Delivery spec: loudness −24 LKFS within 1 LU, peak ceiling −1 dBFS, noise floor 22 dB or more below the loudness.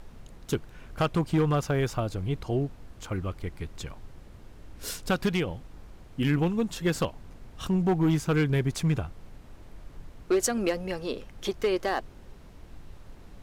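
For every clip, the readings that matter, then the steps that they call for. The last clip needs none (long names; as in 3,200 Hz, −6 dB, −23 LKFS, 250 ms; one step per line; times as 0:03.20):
share of clipped samples 0.9%; peaks flattened at −18.0 dBFS; background noise floor −49 dBFS; target noise floor −51 dBFS; integrated loudness −28.5 LKFS; sample peak −18.0 dBFS; target loudness −24.0 LKFS
→ clipped peaks rebuilt −18 dBFS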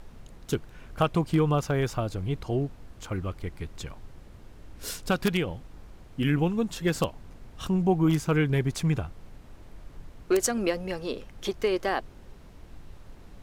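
share of clipped samples 0.0%; background noise floor −49 dBFS; target noise floor −50 dBFS
→ noise reduction from a noise print 6 dB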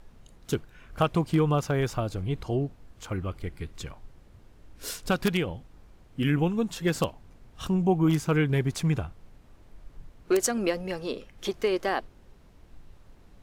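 background noise floor −55 dBFS; integrated loudness −28.0 LKFS; sample peak −9.0 dBFS; target loudness −24.0 LKFS
→ level +4 dB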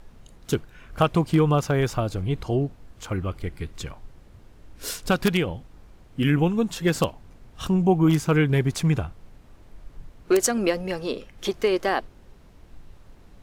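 integrated loudness −24.0 LKFS; sample peak −5.0 dBFS; background noise floor −51 dBFS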